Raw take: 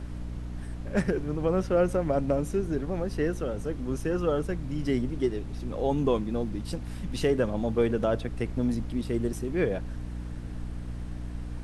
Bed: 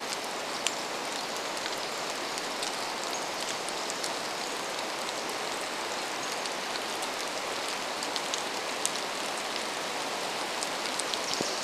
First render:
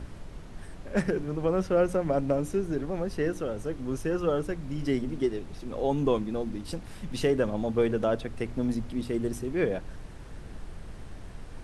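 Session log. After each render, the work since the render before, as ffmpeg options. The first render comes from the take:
ffmpeg -i in.wav -af "bandreject=frequency=60:width_type=h:width=4,bandreject=frequency=120:width_type=h:width=4,bandreject=frequency=180:width_type=h:width=4,bandreject=frequency=240:width_type=h:width=4,bandreject=frequency=300:width_type=h:width=4" out.wav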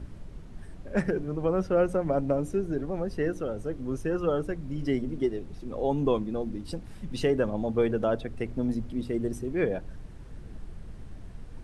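ffmpeg -i in.wav -af "afftdn=noise_reduction=7:noise_floor=-43" out.wav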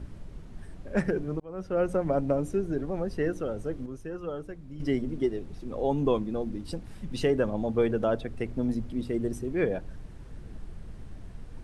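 ffmpeg -i in.wav -filter_complex "[0:a]asplit=4[link_01][link_02][link_03][link_04];[link_01]atrim=end=1.4,asetpts=PTS-STARTPTS,afade=type=out:start_time=1.396:duration=0.004:curve=hsin[link_05];[link_02]atrim=start=1.4:end=3.862,asetpts=PTS-STARTPTS,afade=type=in:duration=0.55[link_06];[link_03]atrim=start=3.858:end=4.802,asetpts=PTS-STARTPTS,volume=-8.5dB[link_07];[link_04]atrim=start=4.798[link_08];[link_05][link_06]concat=n=2:v=0:a=1[link_09];[link_09][link_07]acrossfade=duration=0.004:curve1=hsin:curve2=hsin[link_10];[link_10][link_08]acrossfade=duration=0.004:curve1=hsin:curve2=hsin" out.wav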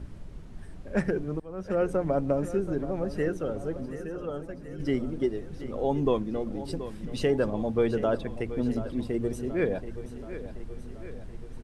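ffmpeg -i in.wav -af "aecho=1:1:729|1458|2187|2916|3645|4374:0.224|0.132|0.0779|0.046|0.0271|0.016" out.wav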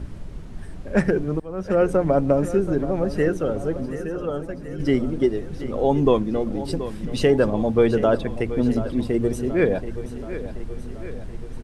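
ffmpeg -i in.wav -af "volume=7.5dB" out.wav

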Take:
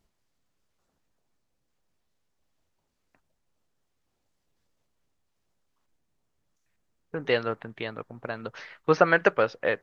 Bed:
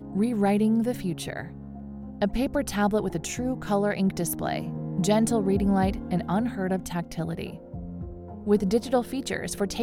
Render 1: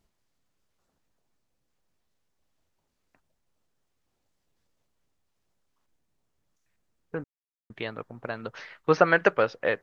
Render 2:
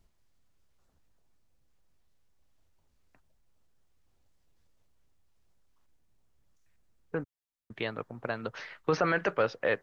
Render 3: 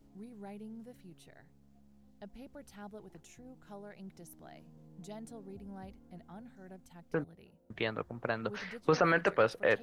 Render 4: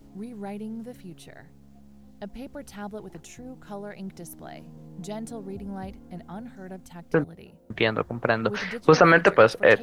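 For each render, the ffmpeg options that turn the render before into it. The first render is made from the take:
ffmpeg -i in.wav -filter_complex "[0:a]asplit=3[link_01][link_02][link_03];[link_01]atrim=end=7.24,asetpts=PTS-STARTPTS,afade=type=out:start_time=7.236:duration=0.004:curve=hsin[link_04];[link_02]atrim=start=7.24:end=7.7,asetpts=PTS-STARTPTS,volume=0[link_05];[link_03]atrim=start=7.7,asetpts=PTS-STARTPTS,afade=type=in:duration=0.004:curve=hsin[link_06];[link_04][link_05][link_06]concat=n=3:v=0:a=1" out.wav
ffmpeg -i in.wav -filter_complex "[0:a]acrossover=split=100[link_01][link_02];[link_01]acompressor=mode=upward:threshold=-58dB:ratio=2.5[link_03];[link_02]alimiter=limit=-16.5dB:level=0:latency=1:release=13[link_04];[link_03][link_04]amix=inputs=2:normalize=0" out.wav
ffmpeg -i in.wav -i bed.wav -filter_complex "[1:a]volume=-24.5dB[link_01];[0:a][link_01]amix=inputs=2:normalize=0" out.wav
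ffmpeg -i in.wav -af "volume=11.5dB" out.wav

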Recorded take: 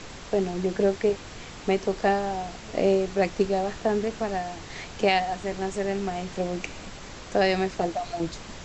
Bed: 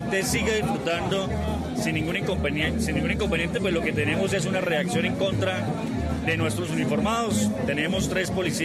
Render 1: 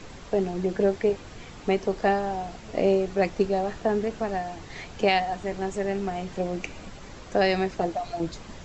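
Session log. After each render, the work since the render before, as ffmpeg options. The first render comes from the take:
ffmpeg -i in.wav -af "afftdn=noise_reduction=6:noise_floor=-42" out.wav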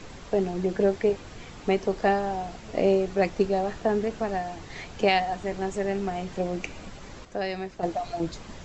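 ffmpeg -i in.wav -filter_complex "[0:a]asplit=3[link_01][link_02][link_03];[link_01]atrim=end=7.252[link_04];[link_02]atrim=start=7.248:end=7.832,asetpts=PTS-STARTPTS,volume=-8dB[link_05];[link_03]atrim=start=7.828[link_06];[link_04][link_05]acrossfade=duration=0.004:curve1=hsin:curve2=hsin[link_07];[link_07][link_06]acrossfade=duration=0.004:curve1=hsin:curve2=hsin" out.wav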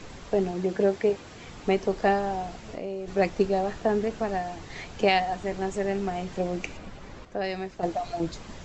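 ffmpeg -i in.wav -filter_complex "[0:a]asettb=1/sr,asplit=3[link_01][link_02][link_03];[link_01]atrim=end=0.514[link_04];[link_02]atrim=start=0.51:end=1.44,asetpts=PTS-STARTPTS,afade=type=in:duration=0.004:curve=qsin,afade=type=out:start_time=0.926:duration=0.004:curve=qsin,highpass=frequency=120:poles=1[link_05];[link_03]atrim=start=1.436[link_06];[link_04][link_05]acrossfade=duration=0.004:curve1=hsin:curve2=qsin[link_07];[link_07][link_06]acrossfade=duration=0.004:curve1=qsin:curve2=hsin,asplit=3[link_08][link_09][link_10];[link_08]afade=type=out:start_time=2.55:duration=0.02[link_11];[link_09]acompressor=threshold=-34dB:ratio=3:attack=3.2:release=140:knee=1:detection=peak,afade=type=in:start_time=2.55:duration=0.02,afade=type=out:start_time=3.07:duration=0.02[link_12];[link_10]afade=type=in:start_time=3.07:duration=0.02[link_13];[link_11][link_12][link_13]amix=inputs=3:normalize=0,asettb=1/sr,asplit=3[link_14][link_15][link_16];[link_14]atrim=end=6.774[link_17];[link_15]atrim=start=6.77:end=7.44,asetpts=PTS-STARTPTS,afade=type=in:duration=0.004:curve=qsin,afade=type=out:start_time=0.666:duration=0.004:curve=qsin,lowpass=frequency=3100:poles=1[link_18];[link_16]atrim=start=7.436[link_19];[link_17][link_18]acrossfade=duration=0.004:curve1=hsin:curve2=qsin[link_20];[link_20][link_19]acrossfade=duration=0.004:curve1=qsin:curve2=hsin" out.wav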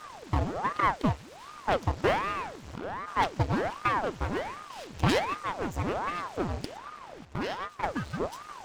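ffmpeg -i in.wav -af "aeval=exprs='abs(val(0))':channel_layout=same,aeval=exprs='val(0)*sin(2*PI*650*n/s+650*0.9/1.3*sin(2*PI*1.3*n/s))':channel_layout=same" out.wav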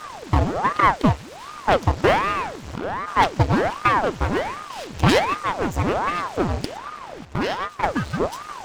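ffmpeg -i in.wav -af "volume=9dB,alimiter=limit=-3dB:level=0:latency=1" out.wav

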